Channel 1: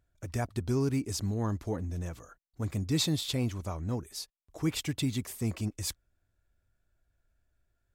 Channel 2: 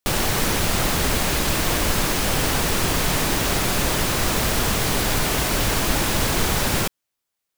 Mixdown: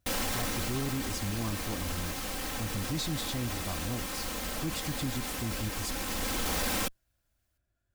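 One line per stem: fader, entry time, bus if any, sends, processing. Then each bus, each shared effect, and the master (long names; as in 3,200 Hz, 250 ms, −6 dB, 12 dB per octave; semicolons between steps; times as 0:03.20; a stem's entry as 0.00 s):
−1.0 dB, 0.00 s, no send, notch comb filter 450 Hz
−0.5 dB, 0.00 s, no send, lower of the sound and its delayed copy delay 3.8 ms; automatic ducking −12 dB, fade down 1.05 s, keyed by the first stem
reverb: not used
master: soft clipping −21 dBFS, distortion −16 dB; brickwall limiter −25 dBFS, peak gain reduction 4 dB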